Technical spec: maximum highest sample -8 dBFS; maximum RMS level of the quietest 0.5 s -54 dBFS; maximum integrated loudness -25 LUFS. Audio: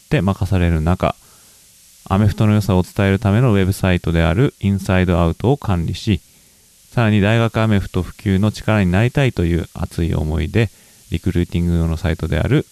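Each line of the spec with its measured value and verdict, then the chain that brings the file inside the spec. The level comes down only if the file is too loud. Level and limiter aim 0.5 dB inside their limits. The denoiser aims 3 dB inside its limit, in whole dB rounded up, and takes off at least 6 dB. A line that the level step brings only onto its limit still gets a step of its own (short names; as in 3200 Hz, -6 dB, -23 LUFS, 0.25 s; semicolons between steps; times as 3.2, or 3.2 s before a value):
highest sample -2.5 dBFS: fail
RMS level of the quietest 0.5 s -50 dBFS: fail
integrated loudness -17.5 LUFS: fail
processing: gain -8 dB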